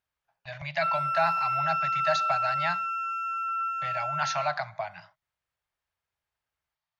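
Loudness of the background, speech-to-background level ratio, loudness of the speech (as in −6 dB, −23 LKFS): −28.5 LKFS, −3.5 dB, −32.0 LKFS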